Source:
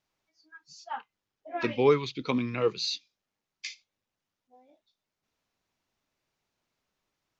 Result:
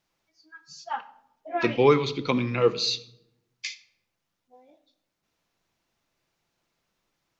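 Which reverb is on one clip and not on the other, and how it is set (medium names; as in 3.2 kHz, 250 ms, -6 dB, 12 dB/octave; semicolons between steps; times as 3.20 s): simulated room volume 2200 m³, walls furnished, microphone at 0.78 m; trim +4.5 dB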